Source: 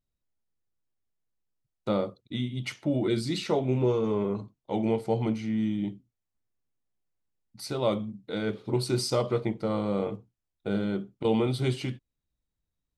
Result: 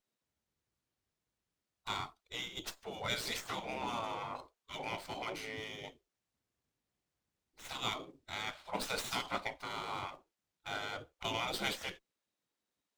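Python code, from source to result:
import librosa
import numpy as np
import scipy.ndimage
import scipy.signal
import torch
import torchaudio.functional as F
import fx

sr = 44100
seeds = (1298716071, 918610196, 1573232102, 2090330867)

y = fx.spec_gate(x, sr, threshold_db=-20, keep='weak')
y = fx.running_max(y, sr, window=3)
y = y * 10.0 ** (4.5 / 20.0)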